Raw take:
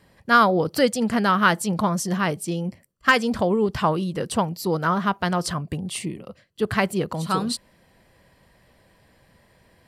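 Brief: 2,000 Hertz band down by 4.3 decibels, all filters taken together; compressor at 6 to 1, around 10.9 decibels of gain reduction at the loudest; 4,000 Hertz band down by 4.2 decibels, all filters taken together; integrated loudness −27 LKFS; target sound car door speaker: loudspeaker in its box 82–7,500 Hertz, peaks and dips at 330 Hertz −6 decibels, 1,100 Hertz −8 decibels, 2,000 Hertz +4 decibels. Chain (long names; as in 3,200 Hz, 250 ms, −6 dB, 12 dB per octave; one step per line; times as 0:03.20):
parametric band 2,000 Hz −6 dB
parametric band 4,000 Hz −3.5 dB
downward compressor 6 to 1, threshold −25 dBFS
loudspeaker in its box 82–7,500 Hz, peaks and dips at 330 Hz −6 dB, 1,100 Hz −8 dB, 2,000 Hz +4 dB
level +4.5 dB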